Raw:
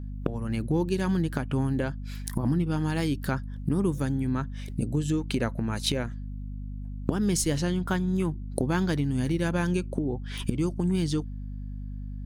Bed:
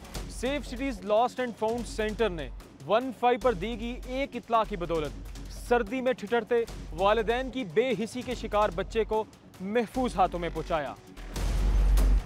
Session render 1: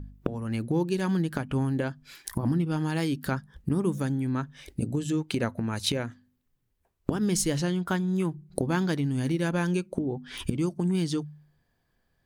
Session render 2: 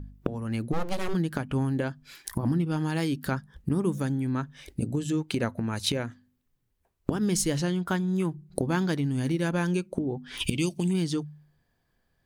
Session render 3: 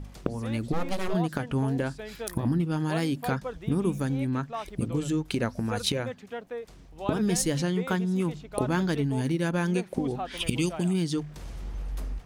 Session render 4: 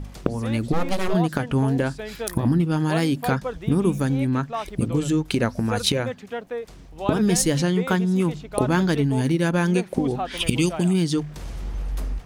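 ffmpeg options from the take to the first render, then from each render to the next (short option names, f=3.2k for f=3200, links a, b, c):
-af "bandreject=f=50:t=h:w=4,bandreject=f=100:t=h:w=4,bandreject=f=150:t=h:w=4,bandreject=f=200:t=h:w=4,bandreject=f=250:t=h:w=4"
-filter_complex "[0:a]asplit=3[a][b][c];[a]afade=t=out:st=0.72:d=0.02[d];[b]aeval=exprs='abs(val(0))':c=same,afade=t=in:st=0.72:d=0.02,afade=t=out:st=1.13:d=0.02[e];[c]afade=t=in:st=1.13:d=0.02[f];[d][e][f]amix=inputs=3:normalize=0,asplit=3[g][h][i];[g]afade=t=out:st=10.4:d=0.02[j];[h]highshelf=f=2k:t=q:w=3:g=9.5,afade=t=in:st=10.4:d=0.02,afade=t=out:st=10.92:d=0.02[k];[i]afade=t=in:st=10.92:d=0.02[l];[j][k][l]amix=inputs=3:normalize=0"
-filter_complex "[1:a]volume=-10.5dB[a];[0:a][a]amix=inputs=2:normalize=0"
-af "volume=6dB"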